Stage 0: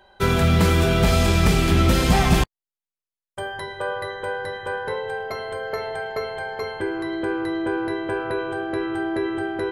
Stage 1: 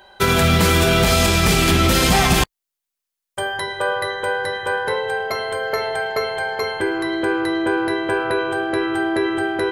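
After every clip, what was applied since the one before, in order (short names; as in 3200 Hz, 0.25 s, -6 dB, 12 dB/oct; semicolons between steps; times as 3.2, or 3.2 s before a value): tilt +1.5 dB/oct; maximiser +11.5 dB; gain -5 dB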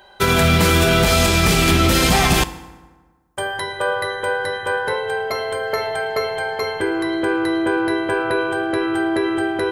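FDN reverb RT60 1.4 s, low-frequency decay 1.05×, high-frequency decay 0.6×, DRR 12.5 dB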